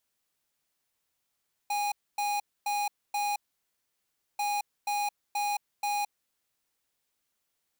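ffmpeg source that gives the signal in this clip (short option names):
-f lavfi -i "aevalsrc='0.0335*(2*lt(mod(822*t,1),0.5)-1)*clip(min(mod(mod(t,2.69),0.48),0.22-mod(mod(t,2.69),0.48))/0.005,0,1)*lt(mod(t,2.69),1.92)':d=5.38:s=44100"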